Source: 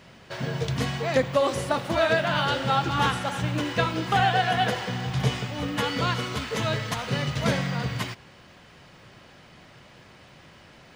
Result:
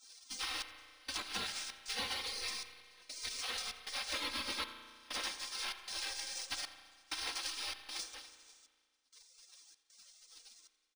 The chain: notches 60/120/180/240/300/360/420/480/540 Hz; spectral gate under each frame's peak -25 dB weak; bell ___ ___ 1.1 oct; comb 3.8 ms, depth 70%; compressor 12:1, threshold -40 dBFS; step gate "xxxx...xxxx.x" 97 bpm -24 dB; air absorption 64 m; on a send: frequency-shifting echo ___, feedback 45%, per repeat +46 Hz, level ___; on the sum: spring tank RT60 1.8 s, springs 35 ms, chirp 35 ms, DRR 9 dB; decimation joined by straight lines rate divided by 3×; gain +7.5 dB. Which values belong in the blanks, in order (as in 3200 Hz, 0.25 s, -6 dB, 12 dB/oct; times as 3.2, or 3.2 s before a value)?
5500 Hz, +10.5 dB, 88 ms, -20.5 dB